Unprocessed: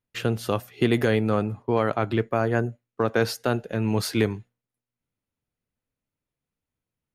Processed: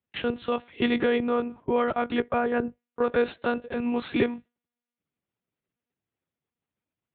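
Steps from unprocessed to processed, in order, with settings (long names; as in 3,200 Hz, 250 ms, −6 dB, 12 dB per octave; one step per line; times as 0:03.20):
one-pitch LPC vocoder at 8 kHz 240 Hz
high-pass filter 110 Hz 12 dB per octave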